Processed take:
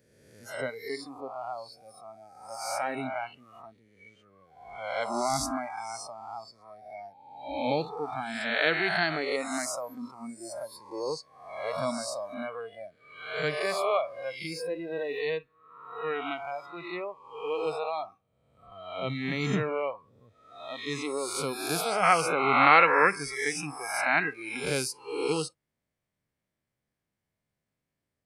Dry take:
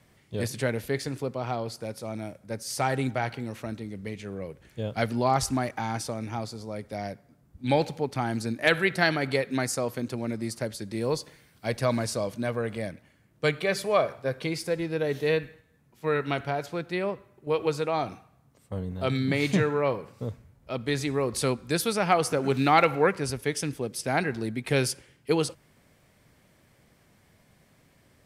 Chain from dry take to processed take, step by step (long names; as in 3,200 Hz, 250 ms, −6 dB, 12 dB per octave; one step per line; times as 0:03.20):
peak hold with a rise ahead of every peak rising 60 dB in 1.49 s
noise reduction from a noise print of the clip's start 21 dB
0:22.03–0:24.57: flat-topped bell 1,600 Hz +8 dB
level −6.5 dB